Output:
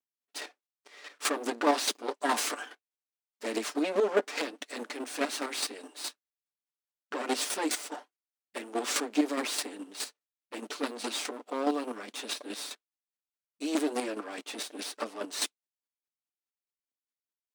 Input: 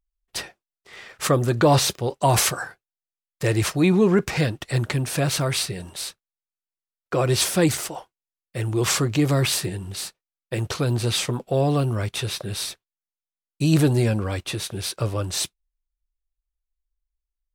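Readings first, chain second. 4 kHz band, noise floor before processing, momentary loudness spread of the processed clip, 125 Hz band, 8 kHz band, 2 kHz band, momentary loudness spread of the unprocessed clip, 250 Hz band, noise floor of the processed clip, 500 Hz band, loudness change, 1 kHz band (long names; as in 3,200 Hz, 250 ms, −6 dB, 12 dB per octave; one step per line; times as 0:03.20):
−8.0 dB, below −85 dBFS, 14 LU, below −40 dB, −9.0 dB, −6.5 dB, 14 LU, −10.0 dB, below −85 dBFS, −9.0 dB, −10.0 dB, −6.5 dB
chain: lower of the sound and its delayed copy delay 6.8 ms
parametric band 13,000 Hz −12.5 dB 0.31 octaves
square-wave tremolo 4.8 Hz, depth 60%, duty 20%
asymmetric clip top −22 dBFS
linear-phase brick-wall high-pass 220 Hz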